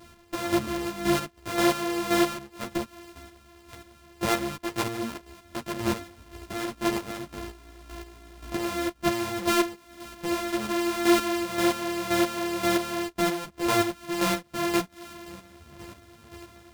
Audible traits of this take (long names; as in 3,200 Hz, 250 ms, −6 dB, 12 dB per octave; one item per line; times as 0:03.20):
a buzz of ramps at a fixed pitch in blocks of 128 samples
chopped level 1.9 Hz, depth 60%, duty 25%
a shimmering, thickened sound